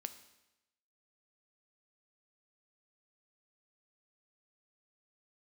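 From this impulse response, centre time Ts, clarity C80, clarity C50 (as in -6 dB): 8 ms, 15.0 dB, 13.0 dB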